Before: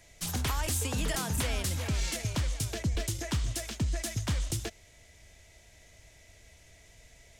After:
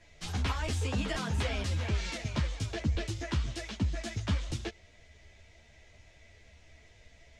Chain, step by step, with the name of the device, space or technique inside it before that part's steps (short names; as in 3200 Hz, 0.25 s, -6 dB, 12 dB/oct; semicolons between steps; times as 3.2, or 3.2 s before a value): string-machine ensemble chorus (ensemble effect; LPF 4300 Hz 12 dB/oct); gain +3 dB